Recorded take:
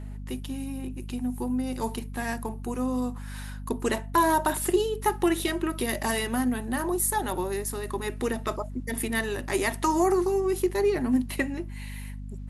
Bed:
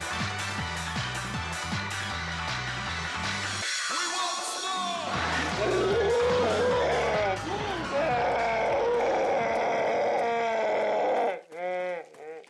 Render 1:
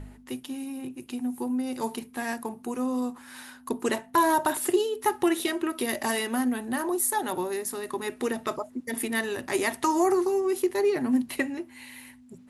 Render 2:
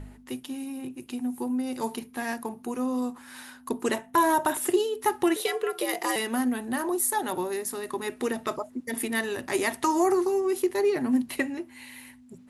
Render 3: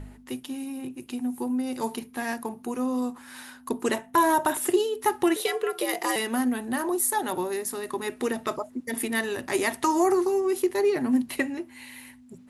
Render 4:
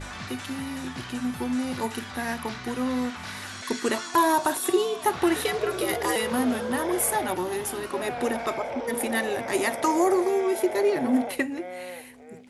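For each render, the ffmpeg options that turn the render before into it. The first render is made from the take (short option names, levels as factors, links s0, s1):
-af "bandreject=f=50:t=h:w=4,bandreject=f=100:t=h:w=4,bandreject=f=150:t=h:w=4,bandreject=f=200:t=h:w=4"
-filter_complex "[0:a]asettb=1/sr,asplit=3[s0][s1][s2];[s0]atrim=end=1.944[s3];[s1]atrim=start=1.94:end=3,asetpts=PTS-STARTPTS,afade=t=in:d=0.004:c=qsin,afade=t=out:st=1.056:d=0.004:c=qsin,bandreject=f=7900:w=9.1[s4];[s2]atrim=start=2.996[s5];[s3][s4]acrossfade=d=0.004:c1=hsin:c2=qsin[s6];[s6][s5]acrossfade=d=0.004:c1=qsin:c2=hsin,asettb=1/sr,asplit=3[s7][s8][s9];[s7]atrim=end=3.944[s10];[s8]atrim=start=3.94:end=4.68,asetpts=PTS-STARTPTS,afade=t=in:d=0.004:c=qsin,afade=t=out:st=0.736:d=0.004:c=qsin,equalizer=f=4500:t=o:w=0.24:g=-7[s11];[s9]atrim=start=4.676[s12];[s10][s11]acrossfade=d=0.004:c1=hsin:c2=qsin[s13];[s13][s12]acrossfade=d=0.004:c1=qsin:c2=hsin,asettb=1/sr,asplit=3[s14][s15][s16];[s14]atrim=end=5.364[s17];[s15]atrim=start=5.36:end=6.16,asetpts=PTS-STARTPTS,afade=t=in:d=0.004:c=qsin,afade=t=out:st=0.796:d=0.004:c=qsin,afreqshift=98[s18];[s16]atrim=start=6.156[s19];[s17][s18]acrossfade=d=0.004:c1=hsin:c2=qsin[s20];[s20][s19]acrossfade=d=0.004:c1=qsin:c2=hsin"
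-af "volume=1.12"
-filter_complex "[1:a]volume=0.447[s0];[0:a][s0]amix=inputs=2:normalize=0"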